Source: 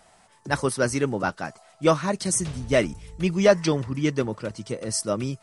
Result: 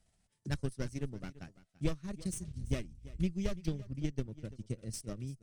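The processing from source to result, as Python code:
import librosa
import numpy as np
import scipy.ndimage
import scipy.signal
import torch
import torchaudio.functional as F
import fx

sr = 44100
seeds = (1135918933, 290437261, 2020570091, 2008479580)

p1 = fx.clip_asym(x, sr, top_db=-26.5, bottom_db=-9.5)
p2 = fx.transient(p1, sr, attack_db=10, sustain_db=-10)
p3 = fx.tone_stack(p2, sr, knobs='10-0-1')
p4 = p3 + fx.echo_single(p3, sr, ms=338, db=-18.5, dry=0)
y = p4 * 10.0 ** (2.5 / 20.0)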